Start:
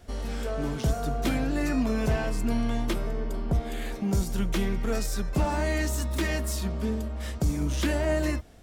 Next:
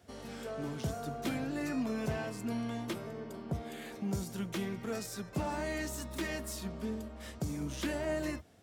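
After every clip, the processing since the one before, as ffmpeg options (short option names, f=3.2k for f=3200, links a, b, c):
-af "highpass=f=84:w=0.5412,highpass=f=84:w=1.3066,volume=-7.5dB"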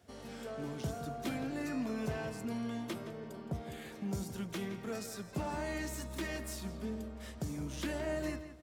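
-filter_complex "[0:a]asplit=2[a][b];[b]adelay=168,lowpass=f=4.2k:p=1,volume=-11dB,asplit=2[c][d];[d]adelay=168,lowpass=f=4.2k:p=1,volume=0.28,asplit=2[e][f];[f]adelay=168,lowpass=f=4.2k:p=1,volume=0.28[g];[a][c][e][g]amix=inputs=4:normalize=0,volume=-2.5dB"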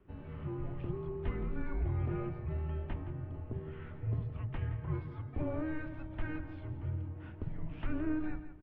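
-filter_complex "[0:a]tiltshelf=f=970:g=8,acrossover=split=220[a][b];[a]adelay=40[c];[c][b]amix=inputs=2:normalize=0,highpass=f=200:t=q:w=0.5412,highpass=f=200:t=q:w=1.307,lowpass=f=3.1k:t=q:w=0.5176,lowpass=f=3.1k:t=q:w=0.7071,lowpass=f=3.1k:t=q:w=1.932,afreqshift=-310,volume=1dB"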